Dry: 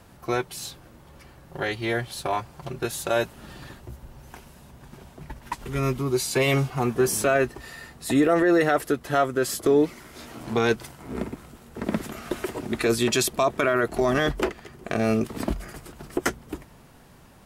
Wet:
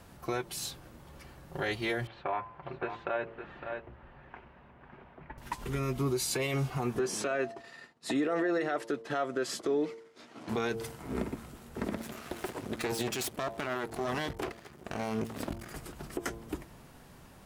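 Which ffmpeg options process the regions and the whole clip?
-filter_complex "[0:a]asettb=1/sr,asplit=3[s0][s1][s2];[s0]atrim=end=2.074[s3];[s1]atrim=start=2.07:end=5.38,asetpts=PTS-STARTPTS,afade=t=in:d=0.004:c=qsin,afade=t=out:st=3.306:d=0.004:c=qsin,lowpass=f=2400:w=0.5412,lowpass=f=2400:w=1.3066,lowshelf=f=310:g=-11,aecho=1:1:559:0.282,atrim=end_sample=145971[s4];[s2]atrim=start=5.376[s5];[s3][s4]acrossfade=d=0.004:c1=hsin:c2=qsin[s6];[s6][s5]acrossfade=d=0.004:c1=qsin:c2=hsin,asettb=1/sr,asplit=3[s7][s8][s9];[s7]atrim=end=6.994[s10];[s8]atrim=start=6.99:end=10.49,asetpts=PTS-STARTPTS,afade=t=in:d=0.004:c=qsin,afade=t=out:st=3.496:d=0.004:c=qsin,agate=range=0.0224:threshold=0.0158:ratio=3:release=100:detection=peak,highpass=200,lowpass=6000[s11];[s9]atrim=start=10.486[s12];[s10][s11]acrossfade=d=0.004:c1=hsin:c2=qsin[s13];[s13][s12]acrossfade=d=0.004:c1=qsin:c2=hsin,asettb=1/sr,asplit=3[s14][s15][s16];[s14]atrim=end=11.954[s17];[s15]atrim=start=11.95:end=15.71,asetpts=PTS-STARTPTS,afade=t=in:d=0.004:c=qsin,afade=t=out:st=3.756:d=0.004:c=qsin,aeval=exprs='max(val(0),0)':c=same,highpass=71[s18];[s16]atrim=start=15.706[s19];[s17][s18]acrossfade=d=0.004:c1=hsin:c2=qsin[s20];[s20][s19]acrossfade=d=0.004:c1=qsin:c2=hsin,bandreject=f=113.5:t=h:w=4,bandreject=f=227:t=h:w=4,bandreject=f=340.5:t=h:w=4,bandreject=f=454:t=h:w=4,bandreject=f=567.5:t=h:w=4,bandreject=f=681:t=h:w=4,bandreject=f=794.5:t=h:w=4,bandreject=f=908:t=h:w=4,bandreject=f=1021.5:t=h:w=4,acompressor=threshold=0.0708:ratio=3,alimiter=limit=0.1:level=0:latency=1:release=76,volume=0.794"

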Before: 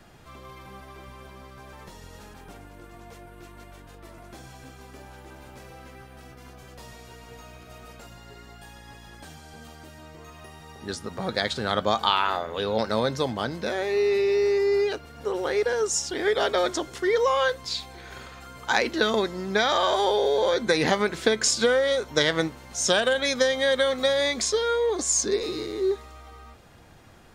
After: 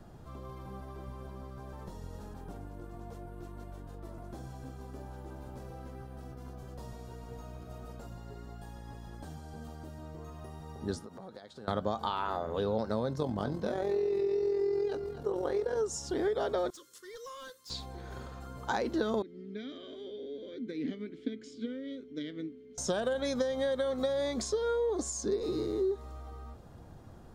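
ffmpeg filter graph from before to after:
-filter_complex "[0:a]asettb=1/sr,asplit=3[s0][s1][s2];[s0]atrim=end=10.994[s3];[s1]atrim=start=10.99:end=11.68,asetpts=PTS-STARTPTS,afade=t=in:d=0.004:c=qsin,afade=t=out:st=0.686:d=0.004:c=qsin,highpass=f=320:p=1,acompressor=threshold=0.00708:ratio=5:attack=3.2:release=140:knee=1:detection=peak[s4];[s2]atrim=start=11.676[s5];[s3][s4]acrossfade=d=0.004:c1=hsin:c2=qsin[s6];[s6][s5]acrossfade=d=0.004:c1=qsin:c2=hsin,asettb=1/sr,asplit=3[s7][s8][s9];[s7]atrim=end=13.134[s10];[s8]atrim=start=13.13:end=15.77,asetpts=PTS-STARTPTS,afade=t=in:d=0.004:c=qsin,afade=t=out:st=2.636:d=0.004:c=qsin,tremolo=f=43:d=0.571,asplit=2[s11][s12];[s12]adelay=20,volume=0.251[s13];[s11][s13]amix=inputs=2:normalize=0,atrim=end_sample=116424,aecho=1:1:251:0.188,atrim=end_sample=116424[s14];[s9]atrim=start=15.766[s15];[s10][s14]acrossfade=d=0.004:c1=hsin:c2=qsin[s16];[s16][s15]acrossfade=d=0.004:c1=qsin:c2=hsin,asettb=1/sr,asplit=3[s17][s18][s19];[s17]atrim=end=16.704[s20];[s18]atrim=start=16.7:end=17.7,asetpts=PTS-STARTPTS,afade=t=in:d=0.004:c=qsin,afade=t=out:st=0.996:d=0.004:c=qsin,asuperstop=centerf=760:order=20:qfactor=1.7,aderivative,asoftclip=type=hard:threshold=0.0168[s21];[s19]atrim=start=17.696[s22];[s20][s21]acrossfade=d=0.004:c1=hsin:c2=qsin[s23];[s23][s22]acrossfade=d=0.004:c1=qsin:c2=hsin,asettb=1/sr,asplit=3[s24][s25][s26];[s24]atrim=end=19.224[s27];[s25]atrim=start=19.22:end=22.78,asetpts=PTS-STARTPTS,afade=t=in:d=0.004:c=qsin,afade=t=out:st=3.556:d=0.004:c=qsin,asplit=3[s28][s29][s30];[s28]bandpass=f=270:t=q:w=8,volume=1[s31];[s29]bandpass=f=2290:t=q:w=8,volume=0.501[s32];[s30]bandpass=f=3010:t=q:w=8,volume=0.355[s33];[s31][s32][s33]amix=inputs=3:normalize=0,aeval=exprs='val(0)+0.00282*sin(2*PI*430*n/s)':c=same[s34];[s26]atrim=start=22.776[s35];[s27][s34]acrossfade=d=0.004:c1=hsin:c2=qsin[s36];[s36][s35]acrossfade=d=0.004:c1=qsin:c2=hsin,equalizer=f=2300:t=o:w=1.4:g=-14.5,acompressor=threshold=0.0398:ratio=6,bass=f=250:g=3,treble=f=4000:g=-8"

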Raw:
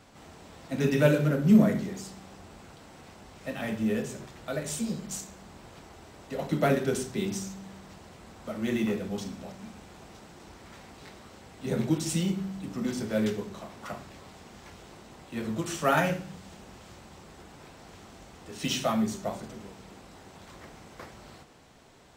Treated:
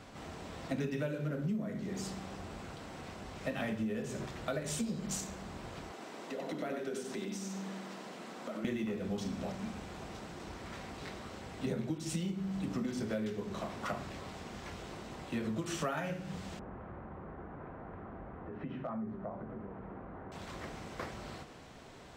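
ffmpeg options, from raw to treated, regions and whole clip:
-filter_complex "[0:a]asettb=1/sr,asplit=3[s0][s1][s2];[s0]atrim=end=5.914[s3];[s1]atrim=start=5.91:end=8.65,asetpts=PTS-STARTPTS,afade=t=in:d=0.004:c=qsin,afade=t=out:st=2.736:d=0.004:c=qsin,highpass=f=200:w=0.5412,highpass=f=200:w=1.3066,acompressor=threshold=0.00794:ratio=4:attack=3.2:release=140:knee=1:detection=peak,aecho=1:1:94:0.501,atrim=end_sample=120834[s4];[s2]atrim=start=8.646[s5];[s3][s4]acrossfade=d=0.004:c1=hsin:c2=qsin[s6];[s6][s5]acrossfade=d=0.004:c1=qsin:c2=hsin,asettb=1/sr,asplit=3[s7][s8][s9];[s7]atrim=end=16.594[s10];[s8]atrim=start=16.59:end=20.32,asetpts=PTS-STARTPTS,afade=t=in:d=0.004:c=qsin,afade=t=out:st=3.726:d=0.004:c=qsin,lowpass=f=1600:w=0.5412,lowpass=f=1600:w=1.3066,acompressor=threshold=0.00562:ratio=3:attack=3.2:release=140:knee=1:detection=peak,asoftclip=type=hard:threshold=0.0188[s11];[s9]atrim=start=20.316[s12];[s10][s11]acrossfade=d=0.004:c1=hsin:c2=qsin[s13];[s13][s12]acrossfade=d=0.004:c1=qsin:c2=hsin,highshelf=f=6700:g=-8,bandreject=f=860:w=24,acompressor=threshold=0.0158:ratio=20,volume=1.58"

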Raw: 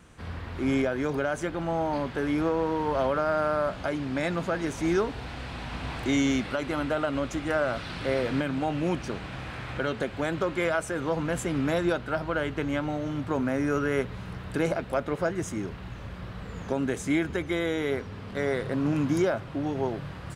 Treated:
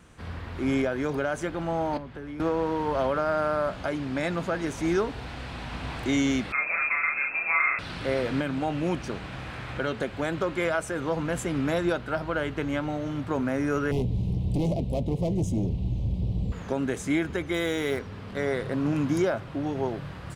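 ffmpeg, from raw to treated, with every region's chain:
-filter_complex "[0:a]asettb=1/sr,asplit=3[s0][s1][s2];[s0]atrim=end=1.974[s3];[s1]atrim=start=1.97:end=2.4,asetpts=PTS-STARTPTS,afade=t=in:d=0.004:c=qsin,afade=t=out:st=0.426:d=0.004:c=qsin,bass=f=250:g=0,treble=f=4000:g=-5,acrossover=split=100|250[s4][s5][s6];[s4]acompressor=threshold=0.00398:ratio=4[s7];[s5]acompressor=threshold=0.00562:ratio=4[s8];[s6]acompressor=threshold=0.00794:ratio=4[s9];[s7][s8][s9]amix=inputs=3:normalize=0[s10];[s2]atrim=start=2.396[s11];[s3][s10]acrossfade=d=0.004:c1=hsin:c2=qsin[s12];[s12][s11]acrossfade=d=0.004:c1=qsin:c2=hsin,asettb=1/sr,asplit=3[s13][s14][s15];[s13]atrim=end=6.524[s16];[s14]atrim=start=6.52:end=7.79,asetpts=PTS-STARTPTS,afade=t=in:d=0.004:c=qsin,afade=t=out:st=1.266:d=0.004:c=qsin,asplit=2[s17][s18];[s18]adelay=38,volume=0.794[s19];[s17][s19]amix=inputs=2:normalize=0,atrim=end_sample=56007,lowpass=f=2300:t=q:w=0.5098,lowpass=f=2300:t=q:w=0.6013,lowpass=f=2300:t=q:w=0.9,lowpass=f=2300:t=q:w=2.563,afreqshift=-2700[s20];[s15]atrim=start=7.786[s21];[s16][s20]acrossfade=d=0.004:c1=hsin:c2=qsin[s22];[s22][s21]acrossfade=d=0.004:c1=qsin:c2=hsin,asettb=1/sr,asplit=3[s23][s24][s25];[s23]atrim=end=13.914[s26];[s24]atrim=start=13.91:end=16.52,asetpts=PTS-STARTPTS,afade=t=in:d=0.004:c=qsin,afade=t=out:st=2.606:d=0.004:c=qsin,bass=f=250:g=14,treble=f=4000:g=-4,asoftclip=type=hard:threshold=0.0794,asuperstop=centerf=1500:order=4:qfactor=0.64[s27];[s25]atrim=start=16.516[s28];[s26][s27]acrossfade=d=0.004:c1=hsin:c2=qsin[s29];[s29][s28]acrossfade=d=0.004:c1=qsin:c2=hsin,asettb=1/sr,asplit=3[s30][s31][s32];[s30]atrim=end=17.544[s33];[s31]atrim=start=17.54:end=17.99,asetpts=PTS-STARTPTS,afade=t=in:d=0.004:c=qsin,afade=t=out:st=0.446:d=0.004:c=qsin,highshelf=f=4000:g=9,acrusher=bits=8:mode=log:mix=0:aa=0.000001[s34];[s32]atrim=start=17.986[s35];[s33][s34]acrossfade=d=0.004:c1=hsin:c2=qsin[s36];[s36][s35]acrossfade=d=0.004:c1=qsin:c2=hsin"

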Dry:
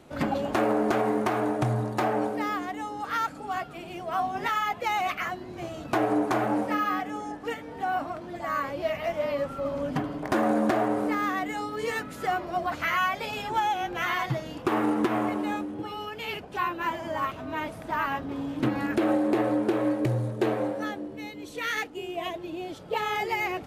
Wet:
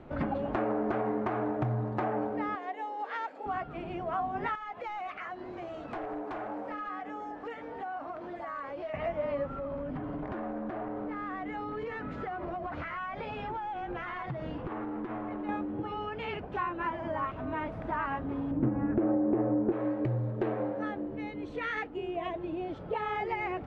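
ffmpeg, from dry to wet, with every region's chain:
-filter_complex "[0:a]asettb=1/sr,asplit=3[s0][s1][s2];[s0]atrim=end=2.554[s3];[s1]atrim=start=2.55:end=3.46,asetpts=PTS-STARTPTS,afade=t=in:d=0.004:c=qsin,afade=t=out:st=0.906:d=0.004:c=qsin,highpass=f=370:w=0.5412,highpass=f=370:w=1.3066,equalizer=f=1300:w=3.5:g=-12,bandreject=f=60:t=h:w=6,bandreject=f=120:t=h:w=6,bandreject=f=180:t=h:w=6,bandreject=f=240:t=h:w=6,bandreject=f=300:t=h:w=6,bandreject=f=360:t=h:w=6,bandreject=f=420:t=h:w=6,bandreject=f=480:t=h:w=6[s4];[s2]atrim=start=3.456[s5];[s3][s4]acrossfade=d=0.004:c1=hsin:c2=qsin[s6];[s6][s5]acrossfade=d=0.004:c1=qsin:c2=hsin,asettb=1/sr,asplit=3[s7][s8][s9];[s7]atrim=end=4.554[s10];[s8]atrim=start=4.55:end=8.94,asetpts=PTS-STARTPTS,afade=t=in:d=0.004:c=qsin,afade=t=out:st=4.386:d=0.004:c=qsin,bass=f=250:g=-13,treble=f=4000:g=6,aeval=exprs='0.1*(abs(mod(val(0)/0.1+3,4)-2)-1)':c=same,acompressor=threshold=0.0112:ratio=3:attack=3.2:release=140:knee=1:detection=peak[s11];[s9]atrim=start=8.936[s12];[s10][s11]acrossfade=d=0.004:c1=hsin:c2=qsin[s13];[s13][s12]acrossfade=d=0.004:c1=qsin:c2=hsin,asettb=1/sr,asplit=3[s14][s15][s16];[s14]atrim=end=9.554[s17];[s15]atrim=start=9.55:end=15.49,asetpts=PTS-STARTPTS,afade=t=in:d=0.004:c=qsin,afade=t=out:st=5.936:d=0.004:c=qsin,acompressor=threshold=0.0224:ratio=12:attack=3.2:release=140:knee=1:detection=peak,volume=39.8,asoftclip=hard,volume=0.0251,lowpass=6200[s18];[s16]atrim=start=15.486[s19];[s17][s18]acrossfade=d=0.004:c1=hsin:c2=qsin[s20];[s20][s19]acrossfade=d=0.004:c1=qsin:c2=hsin,asettb=1/sr,asplit=3[s21][s22][s23];[s21]atrim=end=18.514[s24];[s22]atrim=start=18.51:end=19.72,asetpts=PTS-STARTPTS,afade=t=in:d=0.004:c=qsin,afade=t=out:st=1.206:d=0.004:c=qsin,lowpass=2400,tiltshelf=f=870:g=7.5[s25];[s23]atrim=start=19.716[s26];[s24][s25]acrossfade=d=0.004:c1=hsin:c2=qsin[s27];[s27][s26]acrossfade=d=0.004:c1=qsin:c2=hsin,lowpass=1900,lowshelf=f=60:g=12,acompressor=threshold=0.0158:ratio=2,volume=1.26"

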